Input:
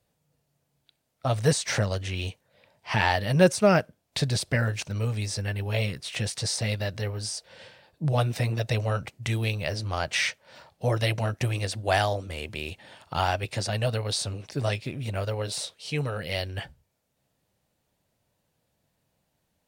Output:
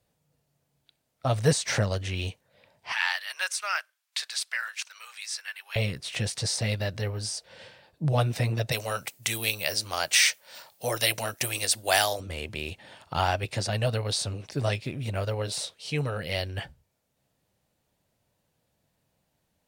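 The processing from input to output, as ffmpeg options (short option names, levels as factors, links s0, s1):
-filter_complex "[0:a]asettb=1/sr,asplit=3[s0][s1][s2];[s0]atrim=end=2.924[s3];[s1]atrim=start=2.92:end=5.76,asetpts=PTS-STARTPTS,afade=t=in:d=0.004:c=qsin,afade=t=out:st=2.836:d=0.004:c=qsin,highpass=f=1200:w=0.5412,highpass=f=1200:w=1.3066[s4];[s2]atrim=start=5.756[s5];[s3][s4]acrossfade=d=0.004:c1=hsin:c2=qsin[s6];[s6][s5]acrossfade=d=0.004:c1=qsin:c2=hsin,asplit=3[s7][s8][s9];[s7]afade=t=out:st=8.71:d=0.02[s10];[s8]aemphasis=mode=production:type=riaa,afade=t=in:st=8.71:d=0.02,afade=t=out:st=12.19:d=0.02[s11];[s9]afade=t=in:st=12.19:d=0.02[s12];[s10][s11][s12]amix=inputs=3:normalize=0"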